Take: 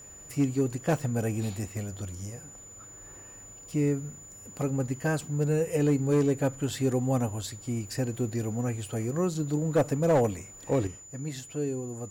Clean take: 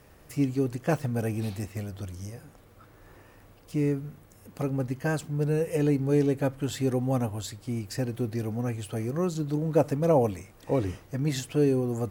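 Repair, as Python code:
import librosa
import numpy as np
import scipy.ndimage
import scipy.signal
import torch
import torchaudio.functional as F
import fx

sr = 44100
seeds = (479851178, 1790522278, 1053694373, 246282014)

y = fx.fix_declip(x, sr, threshold_db=-17.5)
y = fx.notch(y, sr, hz=7000.0, q=30.0)
y = fx.gain(y, sr, db=fx.steps((0.0, 0.0), (10.87, 8.0)))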